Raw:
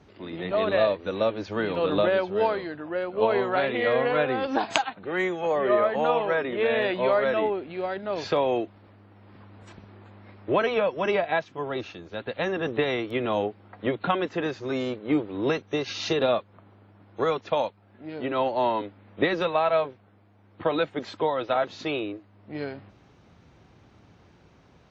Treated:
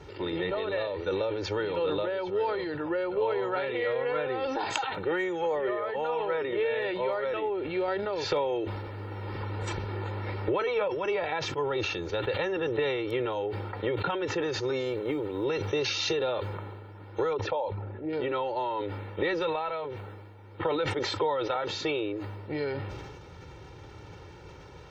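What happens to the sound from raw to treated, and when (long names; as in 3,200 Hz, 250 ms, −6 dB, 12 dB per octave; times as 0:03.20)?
0:07.88–0:10.88: clip gain +7 dB
0:14.86–0:15.44: floating-point word with a short mantissa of 6 bits
0:17.33–0:18.13: spectral envelope exaggerated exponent 1.5
whole clip: downward compressor 12 to 1, threshold −36 dBFS; comb filter 2.2 ms, depth 73%; level that may fall only so fast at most 31 dB per second; level +6.5 dB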